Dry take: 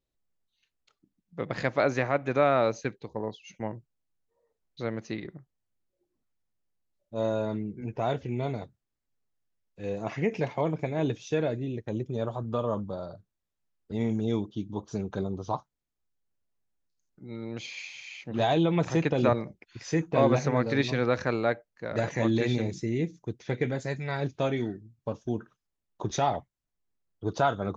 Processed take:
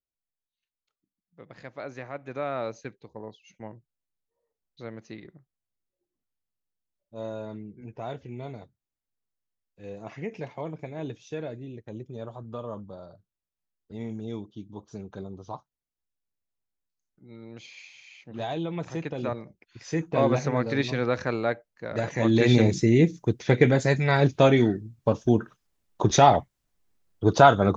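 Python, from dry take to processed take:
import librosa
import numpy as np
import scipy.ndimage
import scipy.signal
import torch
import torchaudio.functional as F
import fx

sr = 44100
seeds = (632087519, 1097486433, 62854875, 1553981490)

y = fx.gain(x, sr, db=fx.line((1.61, -15.0), (2.62, -7.0), (19.43, -7.0), (20.06, 0.0), (22.12, 0.0), (22.59, 10.0)))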